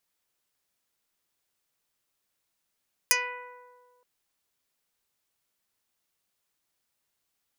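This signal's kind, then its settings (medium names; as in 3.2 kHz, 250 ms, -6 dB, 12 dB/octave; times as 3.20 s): plucked string B4, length 0.92 s, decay 1.84 s, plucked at 0.12, dark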